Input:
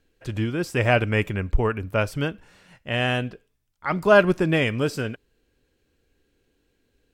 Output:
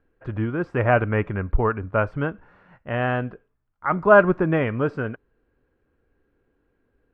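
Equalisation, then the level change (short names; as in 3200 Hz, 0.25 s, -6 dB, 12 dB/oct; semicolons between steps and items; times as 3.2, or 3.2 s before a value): synth low-pass 1300 Hz, resonance Q 1.7; 0.0 dB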